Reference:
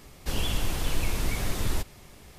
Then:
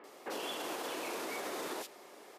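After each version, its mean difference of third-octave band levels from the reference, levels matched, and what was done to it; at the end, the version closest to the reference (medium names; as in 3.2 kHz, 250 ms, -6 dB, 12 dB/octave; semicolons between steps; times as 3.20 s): 7.0 dB: high-pass 340 Hz 24 dB/octave; treble shelf 2.7 kHz -10 dB; bands offset in time lows, highs 40 ms, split 2.5 kHz; peak limiter -34 dBFS, peak gain reduction 6.5 dB; trim +3.5 dB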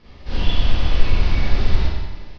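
9.5 dB: steep low-pass 5.1 kHz 48 dB/octave; bass shelf 88 Hz +8.5 dB; on a send: feedback delay 90 ms, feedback 53%, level -10 dB; on the sum: Schroeder reverb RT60 1 s, combs from 31 ms, DRR -9 dB; trim -4.5 dB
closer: first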